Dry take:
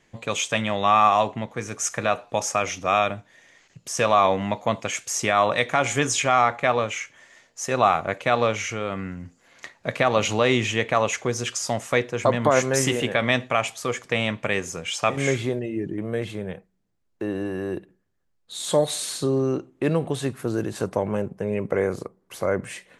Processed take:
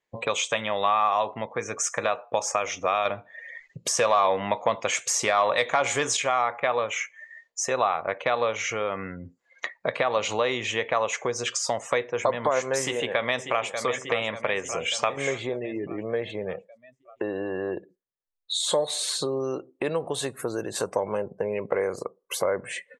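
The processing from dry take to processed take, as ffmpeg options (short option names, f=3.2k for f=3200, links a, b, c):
-filter_complex "[0:a]asettb=1/sr,asplit=3[a][b][c];[a]atrim=end=3.054[d];[b]atrim=start=3.05:end=6.17,asetpts=PTS-STARTPTS,afade=t=in:d=0.004:c=qsin,afade=t=out:st=3.116:d=0.004:c=qsin,acontrast=55[e];[c]atrim=start=6.166[f];[d][e]acrossfade=d=0.004:c1=hsin:c2=qsin[g];[g][f]acrossfade=d=0.004:c1=qsin:c2=hsin,asplit=2[h][i];[i]afade=t=in:st=12.79:d=0.01,afade=t=out:st=13.82:d=0.01,aecho=0:1:590|1180|1770|2360|2950|3540|4130:0.266073|0.159644|0.0957861|0.0574717|0.034483|0.0206898|0.0124139[j];[h][j]amix=inputs=2:normalize=0,asettb=1/sr,asplit=3[k][l][m];[k]atrim=end=19.404[n];[l]atrim=start=19.4:end=22.42,asetpts=PTS-STARTPTS,afade=t=in:d=0.004:c=qsin,afade=t=out:st=3.016:d=0.004:c=qsin,aemphasis=mode=production:type=cd[o];[m]atrim=start=22.416[p];[n][o]acrossfade=d=0.004:c1=hsin:c2=qsin[q];[q][p]acrossfade=d=0.004:c1=qsin:c2=hsin,afftdn=nr=30:nf=-44,acompressor=threshold=-37dB:ratio=3,equalizer=f=500:t=o:w=1:g=10,equalizer=f=1k:t=o:w=1:g=10,equalizer=f=2k:t=o:w=1:g=6,equalizer=f=4k:t=o:w=1:g=9,equalizer=f=8k:t=o:w=1:g=7"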